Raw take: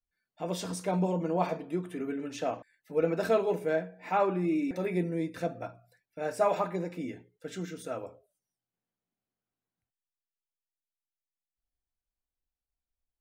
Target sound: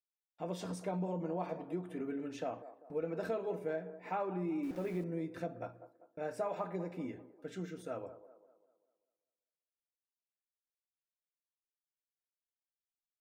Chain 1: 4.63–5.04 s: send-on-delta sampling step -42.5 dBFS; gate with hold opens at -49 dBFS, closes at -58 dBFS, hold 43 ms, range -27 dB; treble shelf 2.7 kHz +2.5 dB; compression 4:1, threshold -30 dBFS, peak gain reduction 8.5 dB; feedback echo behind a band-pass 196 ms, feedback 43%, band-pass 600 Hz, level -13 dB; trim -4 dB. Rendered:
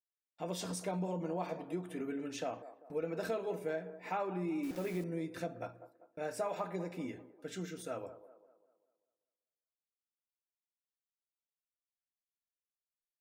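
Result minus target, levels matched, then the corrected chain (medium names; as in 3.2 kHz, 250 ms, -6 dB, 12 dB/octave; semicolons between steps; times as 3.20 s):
4 kHz band +6.5 dB
4.63–5.04 s: send-on-delta sampling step -42.5 dBFS; gate with hold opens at -49 dBFS, closes at -58 dBFS, hold 43 ms, range -27 dB; treble shelf 2.7 kHz -8 dB; compression 4:1, threshold -30 dBFS, peak gain reduction 8.5 dB; feedback echo behind a band-pass 196 ms, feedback 43%, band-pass 600 Hz, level -13 dB; trim -4 dB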